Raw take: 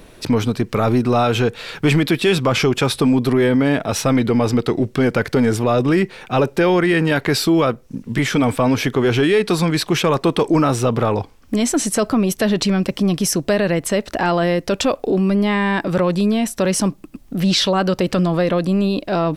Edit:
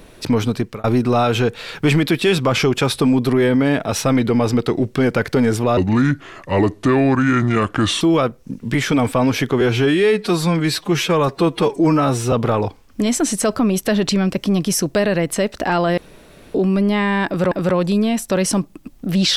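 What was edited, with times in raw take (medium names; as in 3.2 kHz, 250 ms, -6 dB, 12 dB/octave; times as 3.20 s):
0.58–0.84 s: fade out
5.77–7.45 s: speed 75%
9.05–10.86 s: stretch 1.5×
14.51–15.08 s: room tone
15.80–16.05 s: loop, 2 plays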